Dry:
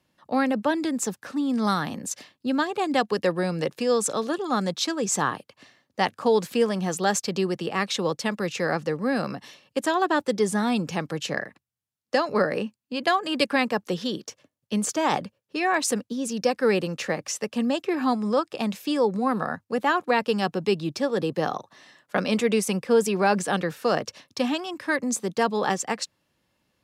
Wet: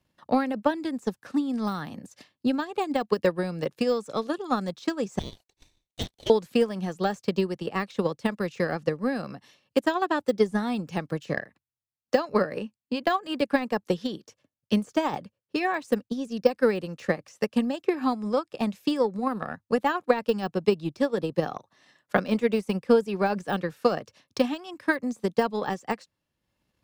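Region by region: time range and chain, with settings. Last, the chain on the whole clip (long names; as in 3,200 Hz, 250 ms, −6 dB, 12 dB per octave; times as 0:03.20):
0:05.19–0:06.30: lower of the sound and its delayed copy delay 0.47 ms + Butterworth high-pass 1,100 Hz 72 dB per octave + ring modulation 1,800 Hz
whole clip: de-essing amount 85%; low-shelf EQ 90 Hz +10.5 dB; transient designer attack +10 dB, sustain −5 dB; level −6 dB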